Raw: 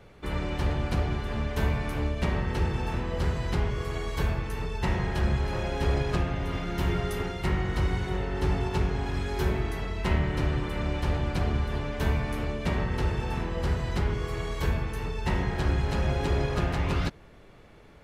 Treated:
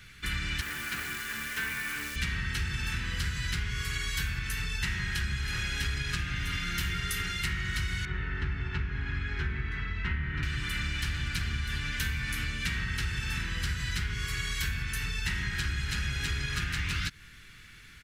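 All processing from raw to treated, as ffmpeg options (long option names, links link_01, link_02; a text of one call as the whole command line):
ffmpeg -i in.wav -filter_complex "[0:a]asettb=1/sr,asplit=3[link_01][link_02][link_03];[link_01]atrim=end=0.614[link_04];[link_02]atrim=start=0.61:end=2.16,asetpts=PTS-STARTPTS,afade=type=in:duration=0.004:curve=qsin,afade=type=out:start_time=1.546:duration=0.004:curve=qsin,acrossover=split=240 2500:gain=0.0708 1 0.251[link_05][link_06][link_07];[link_05][link_06][link_07]amix=inputs=3:normalize=0,acrusher=bits=9:dc=4:mix=0:aa=0.000001[link_08];[link_03]atrim=start=2.156[link_09];[link_04][link_08]acrossfade=duration=0.004:curve1=hsin:curve2=qsin[link_10];[link_10][link_09]acrossfade=duration=0.004:curve1=qsin:curve2=hsin,asettb=1/sr,asplit=3[link_11][link_12][link_13];[link_11]atrim=end=8.054[link_14];[link_12]atrim=start=8.05:end=10.43,asetpts=PTS-STARTPTS,afade=type=in:duration=0.004:curve=qsin,afade=type=out:start_time=2.376:duration=0.004:curve=qsin,lowpass=1800,asplit=2[link_15][link_16];[link_16]adelay=14,volume=-12.5dB[link_17];[link_15][link_17]amix=inputs=2:normalize=0,atrim=end_sample=104958[link_18];[link_13]atrim=start=10.426[link_19];[link_14][link_18]acrossfade=duration=0.004:curve1=hsin:curve2=qsin[link_20];[link_20][link_19]acrossfade=duration=0.004:curve1=qsin:curve2=hsin,firequalizer=gain_entry='entry(110,0);entry(600,-24);entry(1500,9);entry(7000,13)':delay=0.05:min_phase=1,acompressor=threshold=-28dB:ratio=6" out.wav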